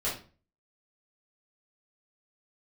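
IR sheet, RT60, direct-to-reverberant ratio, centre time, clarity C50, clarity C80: 0.35 s, -9.0 dB, 32 ms, 5.5 dB, 12.5 dB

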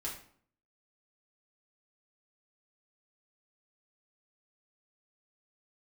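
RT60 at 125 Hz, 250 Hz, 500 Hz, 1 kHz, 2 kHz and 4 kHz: 0.65 s, 0.70 s, 0.55 s, 0.55 s, 0.45 s, 0.40 s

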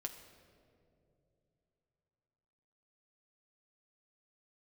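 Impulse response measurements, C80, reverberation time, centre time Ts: 9.5 dB, 2.8 s, 28 ms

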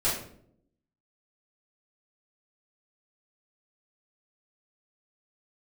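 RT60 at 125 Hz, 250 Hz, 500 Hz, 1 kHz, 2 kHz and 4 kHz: 0.95 s, 1.0 s, 0.80 s, 0.55 s, 0.45 s, 0.40 s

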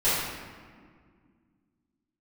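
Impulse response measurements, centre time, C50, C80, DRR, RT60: 101 ms, -2.0 dB, 1.0 dB, -14.0 dB, 1.9 s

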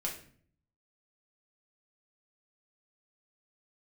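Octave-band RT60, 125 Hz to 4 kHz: 0.95 s, 0.75 s, 0.55 s, 0.45 s, 0.45 s, 0.40 s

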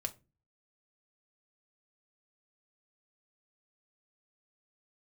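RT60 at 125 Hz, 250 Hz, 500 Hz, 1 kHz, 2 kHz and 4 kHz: 0.55 s, 0.50 s, 0.35 s, 0.25 s, 0.25 s, 0.20 s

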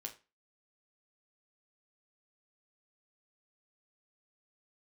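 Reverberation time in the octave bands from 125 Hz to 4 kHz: 0.30 s, 0.30 s, 0.30 s, 0.30 s, 0.30 s, 0.25 s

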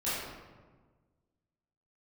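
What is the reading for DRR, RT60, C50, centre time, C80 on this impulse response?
-13.0 dB, 1.4 s, -1.5 dB, 94 ms, 1.5 dB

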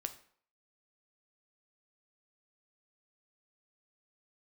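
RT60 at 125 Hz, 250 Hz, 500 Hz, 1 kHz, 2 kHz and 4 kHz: 0.45 s, 0.50 s, 0.55 s, 0.55 s, 0.50 s, 0.45 s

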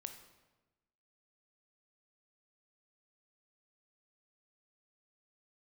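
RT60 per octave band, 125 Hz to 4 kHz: 1.3 s, 1.3 s, 1.2 s, 1.1 s, 0.95 s, 0.85 s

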